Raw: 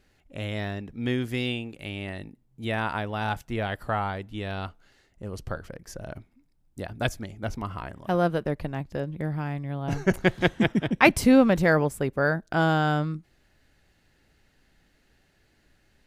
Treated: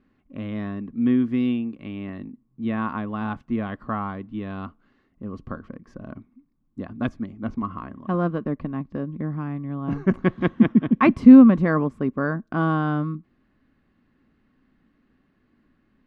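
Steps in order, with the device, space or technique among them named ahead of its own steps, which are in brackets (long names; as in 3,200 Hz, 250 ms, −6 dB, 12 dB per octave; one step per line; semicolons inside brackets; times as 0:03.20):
inside a cardboard box (low-pass filter 2,700 Hz 12 dB per octave; hollow resonant body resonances 240/1,100 Hz, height 17 dB, ringing for 35 ms)
level −6 dB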